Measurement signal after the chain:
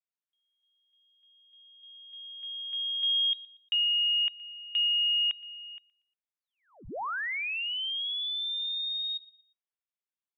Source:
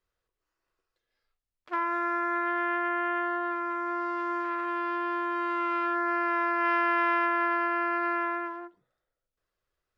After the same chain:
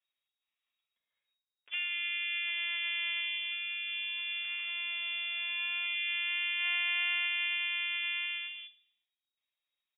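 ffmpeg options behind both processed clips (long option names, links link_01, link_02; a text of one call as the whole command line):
ffmpeg -i in.wav -filter_complex "[0:a]asplit=2[link_01][link_02];[link_02]adelay=118,lowpass=frequency=2400:poles=1,volume=-21dB,asplit=2[link_03][link_04];[link_04]adelay=118,lowpass=frequency=2400:poles=1,volume=0.38,asplit=2[link_05][link_06];[link_06]adelay=118,lowpass=frequency=2400:poles=1,volume=0.38[link_07];[link_01][link_03][link_05][link_07]amix=inputs=4:normalize=0,lowpass=frequency=3200:width_type=q:width=0.5098,lowpass=frequency=3200:width_type=q:width=0.6013,lowpass=frequency=3200:width_type=q:width=0.9,lowpass=frequency=3200:width_type=q:width=2.563,afreqshift=-3800,volume=-6dB" out.wav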